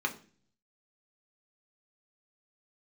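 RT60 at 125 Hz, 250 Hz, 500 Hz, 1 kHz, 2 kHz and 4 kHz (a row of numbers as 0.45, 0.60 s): 0.85, 0.70, 0.45, 0.35, 0.40, 0.45 s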